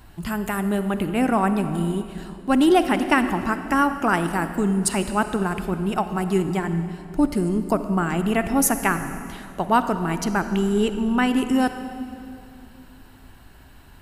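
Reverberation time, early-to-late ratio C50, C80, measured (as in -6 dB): 2.6 s, 9.5 dB, 10.5 dB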